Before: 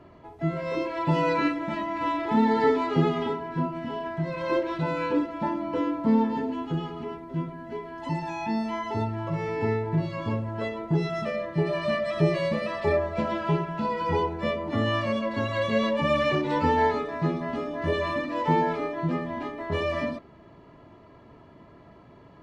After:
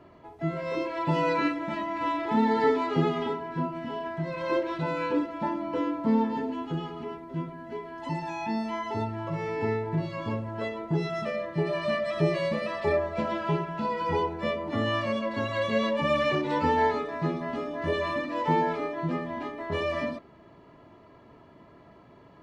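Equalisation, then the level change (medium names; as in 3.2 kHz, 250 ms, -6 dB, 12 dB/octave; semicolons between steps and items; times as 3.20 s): bass shelf 150 Hz -5 dB; -1.0 dB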